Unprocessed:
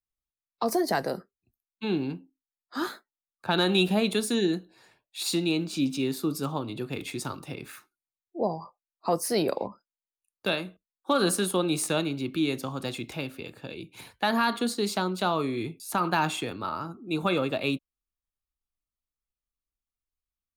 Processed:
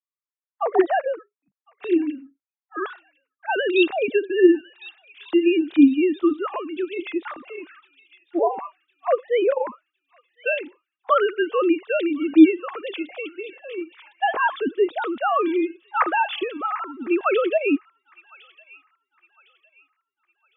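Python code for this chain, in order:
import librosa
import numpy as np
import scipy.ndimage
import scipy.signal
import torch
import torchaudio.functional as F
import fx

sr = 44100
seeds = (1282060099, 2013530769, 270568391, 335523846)

y = fx.sine_speech(x, sr)
y = fx.env_lowpass(y, sr, base_hz=1800.0, full_db=-25.0)
y = fx.echo_wet_highpass(y, sr, ms=1057, feedback_pct=35, hz=2800.0, wet_db=-13.5)
y = F.gain(torch.from_numpy(y), 7.0).numpy()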